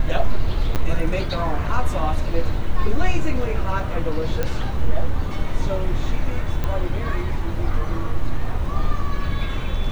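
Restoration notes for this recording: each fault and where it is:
0.75–0.76 s: dropout 8.9 ms
4.43 s: pop -10 dBFS
6.64 s: pop -12 dBFS

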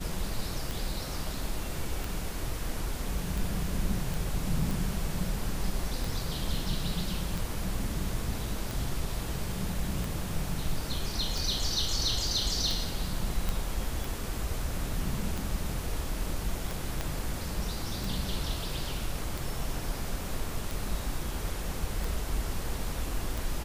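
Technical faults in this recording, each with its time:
tick 45 rpm
4.14 s: pop
13.49 s: pop
17.01 s: pop -17 dBFS

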